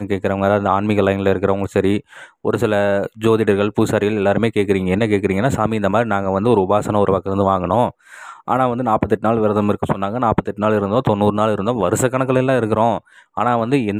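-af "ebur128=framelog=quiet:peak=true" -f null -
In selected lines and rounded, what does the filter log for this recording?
Integrated loudness:
  I:         -17.5 LUFS
  Threshold: -27.7 LUFS
Loudness range:
  LRA:         1.2 LU
  Threshold: -37.7 LUFS
  LRA low:   -18.3 LUFS
  LRA high:  -17.1 LUFS
True peak:
  Peak:       -2.0 dBFS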